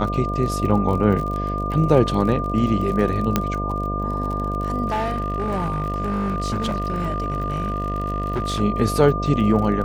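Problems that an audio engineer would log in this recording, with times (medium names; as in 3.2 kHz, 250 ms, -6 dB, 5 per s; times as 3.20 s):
buzz 50 Hz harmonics 14 -26 dBFS
crackle 37 per s -28 dBFS
whine 1.2 kHz -26 dBFS
3.36 s: pop -4 dBFS
4.88–8.61 s: clipped -19 dBFS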